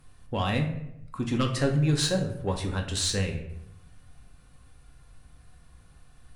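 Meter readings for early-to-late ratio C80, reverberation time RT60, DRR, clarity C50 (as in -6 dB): 11.5 dB, 0.80 s, 2.5 dB, 8.0 dB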